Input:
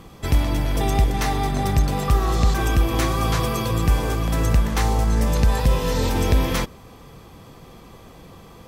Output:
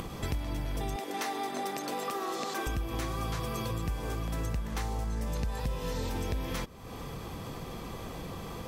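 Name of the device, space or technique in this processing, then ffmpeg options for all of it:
upward and downward compression: -filter_complex "[0:a]asettb=1/sr,asplit=3[a][b][c];[a]atrim=end=0.964[d];[b]atrim=start=0.96:end=2.67,asetpts=PTS-STARTPTS,afade=t=in:d=0.004:c=qsin,afade=t=out:st=1.706:d=0.004:c=qsin,highpass=f=270:w=0.5412,highpass=f=270:w=1.3066[e];[c]atrim=start=2.666[f];[d][e]acrossfade=d=0.004:c1=hsin:c2=qsin[g];[g][f]acrossfade=d=0.004:c1=qsin:c2=hsin,acompressor=mode=upward:threshold=-33dB:ratio=2.5,acompressor=threshold=-33dB:ratio=4"

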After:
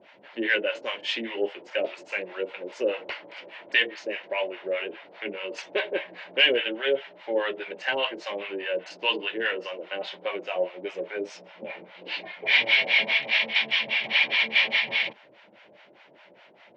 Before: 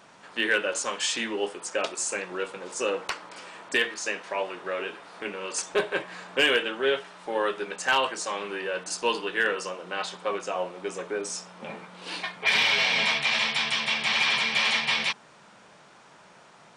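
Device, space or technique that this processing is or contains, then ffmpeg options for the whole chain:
guitar amplifier with harmonic tremolo: -filter_complex "[0:a]acrossover=split=690[a][b];[a]aeval=exprs='val(0)*(1-1/2+1/2*cos(2*PI*4.9*n/s))':c=same[c];[b]aeval=exprs='val(0)*(1-1/2-1/2*cos(2*PI*4.9*n/s))':c=same[d];[c][d]amix=inputs=2:normalize=0,asoftclip=type=tanh:threshold=-15.5dB,highpass=110,equalizer=f=160:t=q:w=4:g=-8,equalizer=f=340:t=q:w=4:g=6,equalizer=f=580:t=q:w=4:g=9,equalizer=f=1.2k:t=q:w=4:g=-9,equalizer=f=2.1k:t=q:w=4:g=8,equalizer=f=2.9k:t=q:w=4:g=6,lowpass=f=4.1k:w=0.5412,lowpass=f=4.1k:w=1.3066,volume=1.5dB"

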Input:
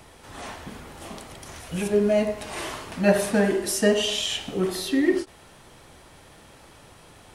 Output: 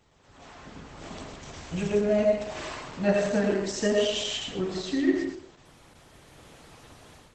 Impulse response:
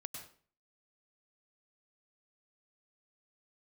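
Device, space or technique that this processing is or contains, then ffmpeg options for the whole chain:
speakerphone in a meeting room: -filter_complex "[1:a]atrim=start_sample=2205[a];[0:a][a]afir=irnorm=-1:irlink=0,dynaudnorm=f=550:g=3:m=12.5dB,volume=-9dB" -ar 48000 -c:a libopus -b:a 12k

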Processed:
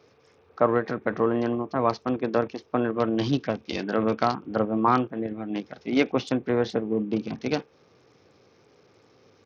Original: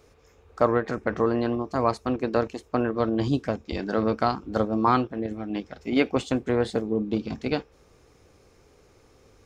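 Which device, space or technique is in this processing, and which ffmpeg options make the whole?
Bluetooth headset: -filter_complex "[0:a]asettb=1/sr,asplit=3[a][b][c];[a]atrim=end=2.964[d];[b]atrim=start=2.96:end=4.26,asetpts=PTS-STARTPTS,afade=t=in:d=0.004:c=qsin,afade=t=out:st=1.296:d=0.004:c=qsin,equalizer=f=3.1k:t=o:w=1.1:g=6[e];[c]atrim=start=4.256[f];[d][e]acrossfade=d=0.004:c1=hsin:c2=qsin[g];[g][f]acrossfade=d=0.004:c1=qsin:c2=hsin,highpass=f=110:w=0.5412,highpass=f=110:w=1.3066,aresample=16000,aresample=44100" -ar 48000 -c:a sbc -b:a 64k

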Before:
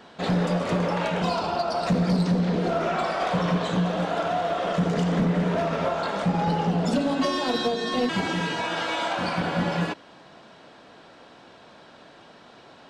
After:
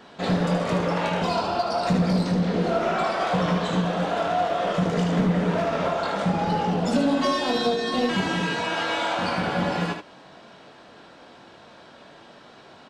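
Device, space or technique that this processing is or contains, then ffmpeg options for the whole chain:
slapback doubling: -filter_complex "[0:a]asplit=3[a][b][c];[b]adelay=21,volume=-7.5dB[d];[c]adelay=75,volume=-6.5dB[e];[a][d][e]amix=inputs=3:normalize=0"

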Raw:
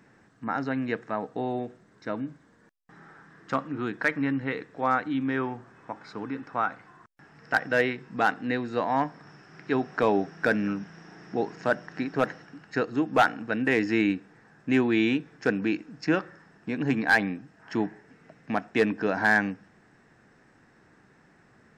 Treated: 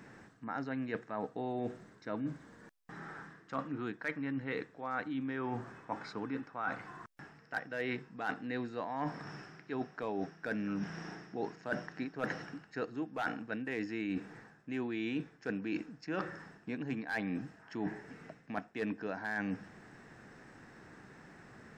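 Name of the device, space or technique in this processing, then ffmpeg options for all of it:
compression on the reversed sound: -af "areverse,acompressor=threshold=-38dB:ratio=12,areverse,volume=4dB"

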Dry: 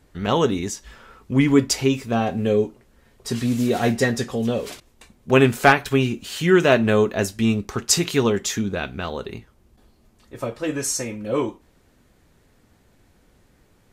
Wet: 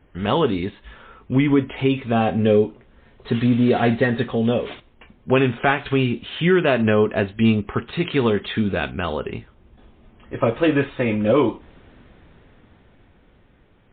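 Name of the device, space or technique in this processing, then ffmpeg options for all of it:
low-bitrate web radio: -af "dynaudnorm=f=240:g=17:m=15dB,alimiter=limit=-9dB:level=0:latency=1:release=157,volume=2dB" -ar 8000 -c:a libmp3lame -b:a 24k

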